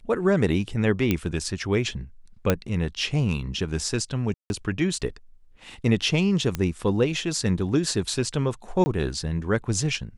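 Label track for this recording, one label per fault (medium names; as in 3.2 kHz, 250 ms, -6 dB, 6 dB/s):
1.110000	1.110000	pop -9 dBFS
2.500000	2.500000	pop -6 dBFS
4.340000	4.500000	dropout 161 ms
6.550000	6.550000	pop -12 dBFS
8.840000	8.860000	dropout 20 ms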